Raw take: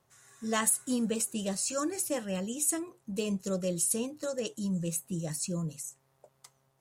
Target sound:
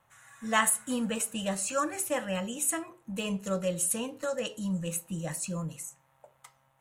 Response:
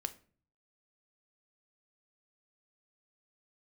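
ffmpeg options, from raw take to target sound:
-filter_complex "[0:a]asplit=2[link_01][link_02];[link_02]acrossover=split=460 4800:gain=0.141 1 0.0794[link_03][link_04][link_05];[link_03][link_04][link_05]amix=inputs=3:normalize=0[link_06];[1:a]atrim=start_sample=2205,lowshelf=frequency=140:gain=9.5[link_07];[link_06][link_07]afir=irnorm=-1:irlink=0,volume=4.5dB[link_08];[link_01][link_08]amix=inputs=2:normalize=0"

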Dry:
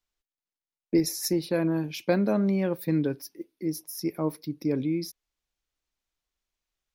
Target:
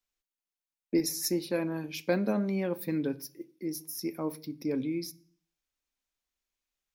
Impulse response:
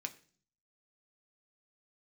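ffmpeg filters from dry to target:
-filter_complex "[0:a]asplit=2[link_01][link_02];[1:a]atrim=start_sample=2205,highshelf=frequency=8700:gain=6.5[link_03];[link_02][link_03]afir=irnorm=-1:irlink=0,volume=0dB[link_04];[link_01][link_04]amix=inputs=2:normalize=0,volume=-7.5dB"

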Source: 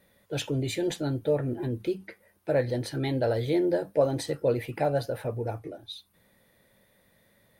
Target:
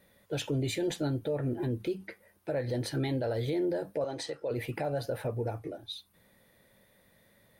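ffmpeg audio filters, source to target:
ffmpeg -i in.wav -filter_complex "[0:a]alimiter=limit=-23.5dB:level=0:latency=1:release=117,asettb=1/sr,asplit=3[link_01][link_02][link_03];[link_01]atrim=end=4.044[link_04];[link_02]atrim=start=4.04:end=4.51,asetpts=PTS-STARTPTS,afade=type=in:duration=0.004:curve=qsin,afade=type=out:start_time=0.466:duration=0.004:curve=qsin,acrossover=split=380 8000:gain=0.224 1 0.126[link_05][link_06][link_07];[link_05][link_06][link_07]amix=inputs=3:normalize=0[link_08];[link_03]atrim=start=4.506[link_09];[link_04][link_08]acrossfade=duration=0.004:curve1=hsin:curve2=qsin[link_10];[link_10][link_09]acrossfade=duration=0.004:curve1=qsin:curve2=hsin" out.wav

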